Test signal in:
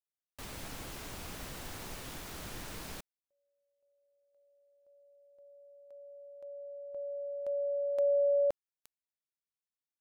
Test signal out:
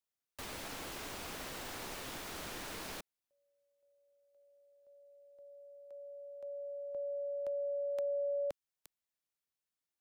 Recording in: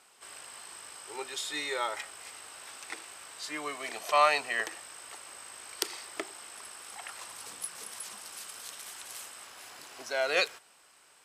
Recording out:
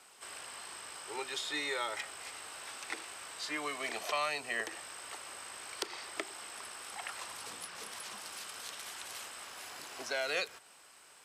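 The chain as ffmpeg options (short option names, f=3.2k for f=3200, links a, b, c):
-filter_complex "[0:a]acrossover=split=240|590|1600|5500[a][b][c][d][e];[a]acompressor=threshold=-56dB:ratio=4[f];[b]acompressor=threshold=-46dB:ratio=4[g];[c]acompressor=threshold=-44dB:ratio=4[h];[d]acompressor=threshold=-39dB:ratio=4[i];[e]acompressor=threshold=-51dB:ratio=4[j];[f][g][h][i][j]amix=inputs=5:normalize=0,volume=2dB"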